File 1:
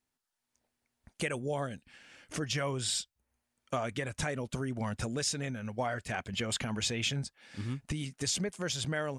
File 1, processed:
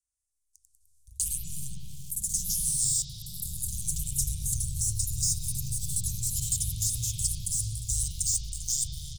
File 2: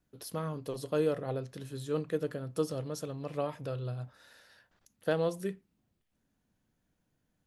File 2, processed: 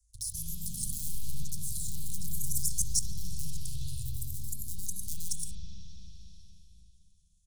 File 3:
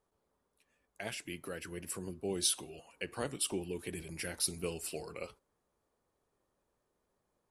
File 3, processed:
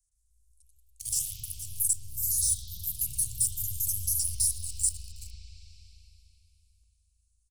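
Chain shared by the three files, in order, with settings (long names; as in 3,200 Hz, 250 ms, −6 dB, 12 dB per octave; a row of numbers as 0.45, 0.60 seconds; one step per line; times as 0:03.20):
downsampling to 22,050 Hz
in parallel at −8 dB: bit reduction 4 bits
on the sum: tilt shelving filter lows −3 dB, about 1,100 Hz
leveller curve on the samples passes 3
output level in coarse steps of 15 dB
inverse Chebyshev band-stop filter 260–1,800 Hz, stop band 70 dB
spring reverb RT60 2.7 s, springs 37/57 ms, chirp 65 ms, DRR −7 dB
delay with pitch and tempo change per echo 154 ms, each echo +2 semitones, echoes 3
multiband upward and downward compressor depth 40%
normalise the peak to −12 dBFS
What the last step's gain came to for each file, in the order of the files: +8.5, +12.0, +8.0 decibels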